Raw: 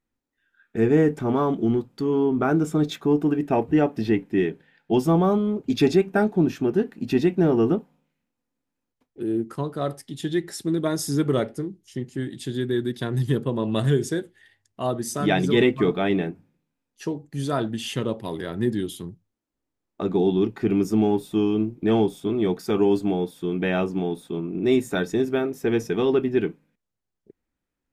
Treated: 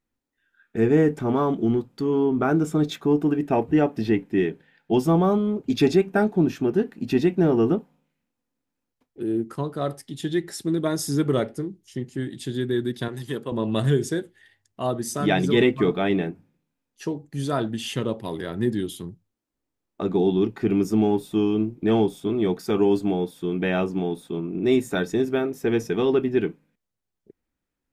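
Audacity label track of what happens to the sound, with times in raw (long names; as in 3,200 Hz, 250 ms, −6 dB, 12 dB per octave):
13.080000	13.520000	high-pass filter 520 Hz 6 dB per octave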